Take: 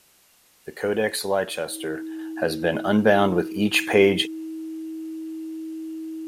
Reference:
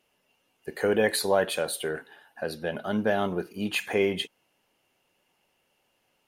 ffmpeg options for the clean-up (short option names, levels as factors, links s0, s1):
-af "bandreject=f=320:w=30,agate=range=0.0891:threshold=0.00316,asetnsamples=n=441:p=0,asendcmd='2.19 volume volume -8dB',volume=1"